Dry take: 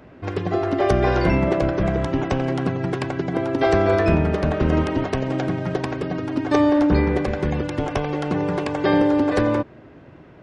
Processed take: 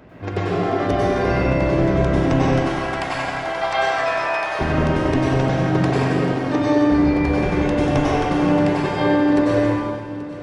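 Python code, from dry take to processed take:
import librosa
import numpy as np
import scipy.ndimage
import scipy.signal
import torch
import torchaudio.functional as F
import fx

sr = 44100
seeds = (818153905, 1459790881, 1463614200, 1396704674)

p1 = fx.highpass(x, sr, hz=690.0, slope=24, at=(2.49, 4.59))
p2 = fx.rider(p1, sr, range_db=5, speed_s=0.5)
p3 = p2 + fx.echo_feedback(p2, sr, ms=831, feedback_pct=44, wet_db=-17, dry=0)
p4 = fx.rev_plate(p3, sr, seeds[0], rt60_s=1.7, hf_ratio=0.9, predelay_ms=85, drr_db=-7.0)
y = p4 * 10.0 ** (-4.5 / 20.0)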